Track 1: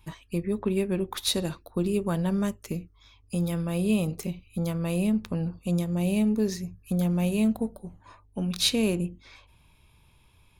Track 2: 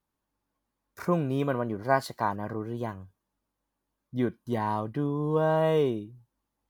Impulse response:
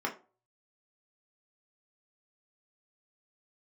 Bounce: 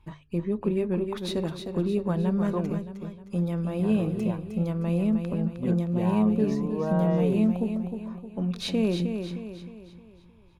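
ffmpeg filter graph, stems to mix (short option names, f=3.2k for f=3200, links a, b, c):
-filter_complex "[0:a]volume=0.5dB,asplit=2[a][b];[b]volume=-7dB[c];[1:a]adelay=1450,volume=-3.5dB,asplit=3[d][e][f];[d]atrim=end=2.7,asetpts=PTS-STARTPTS,afade=t=out:st=2.696:d=0.004:c=hsin[g];[e]atrim=start=2.7:end=3.79,asetpts=PTS-STARTPTS,volume=0[h];[f]atrim=start=3.79,asetpts=PTS-STARTPTS,afade=t=in:d=0.004:c=hsin[i];[g][h][i]concat=n=3:v=0:a=1[j];[c]aecho=0:1:310|620|930|1240|1550|1860:1|0.44|0.194|0.0852|0.0375|0.0165[k];[a][j][k]amix=inputs=3:normalize=0,lowpass=f=1.3k:p=1,bandreject=f=50:t=h:w=6,bandreject=f=100:t=h:w=6,bandreject=f=150:t=h:w=6"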